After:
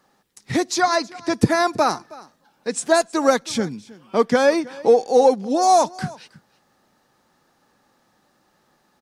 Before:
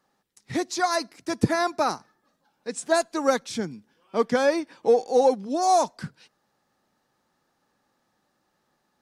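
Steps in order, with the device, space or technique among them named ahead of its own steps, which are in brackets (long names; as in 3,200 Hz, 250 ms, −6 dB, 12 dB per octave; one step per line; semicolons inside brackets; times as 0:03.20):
0:00.80–0:01.34: low-pass filter 5,700 Hz 12 dB per octave
parallel compression (in parallel at −1 dB: downward compressor, threshold −32 dBFS, peak gain reduction 16.5 dB)
on the sum: single-tap delay 319 ms −21 dB
level +3.5 dB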